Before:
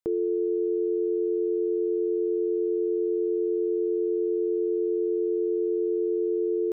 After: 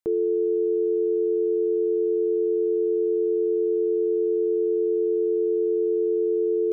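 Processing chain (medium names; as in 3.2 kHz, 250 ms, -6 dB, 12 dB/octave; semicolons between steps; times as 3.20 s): dynamic bell 430 Hz, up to +5 dB, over -39 dBFS, Q 6.1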